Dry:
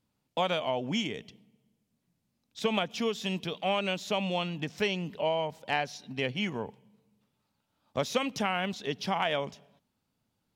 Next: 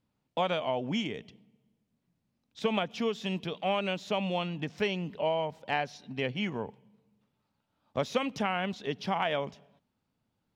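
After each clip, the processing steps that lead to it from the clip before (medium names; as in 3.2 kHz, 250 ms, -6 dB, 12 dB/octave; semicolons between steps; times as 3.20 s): treble shelf 5.2 kHz -11.5 dB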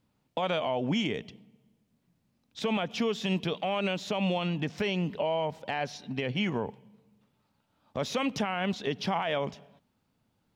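peak limiter -25.5 dBFS, peak gain reduction 10.5 dB; trim +5.5 dB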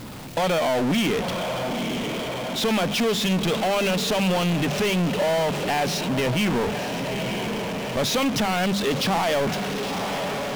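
hum notches 50/100/150/200 Hz; echo that smears into a reverb 945 ms, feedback 52%, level -15 dB; power-law waveshaper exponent 0.35; trim +1.5 dB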